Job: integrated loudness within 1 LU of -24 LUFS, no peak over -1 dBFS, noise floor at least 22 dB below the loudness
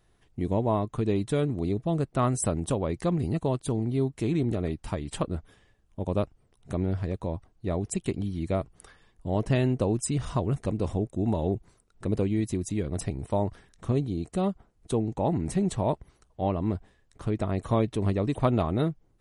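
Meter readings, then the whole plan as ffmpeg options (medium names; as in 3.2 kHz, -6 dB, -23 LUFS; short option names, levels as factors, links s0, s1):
loudness -29.0 LUFS; peak level -9.5 dBFS; loudness target -24.0 LUFS
-> -af "volume=1.78"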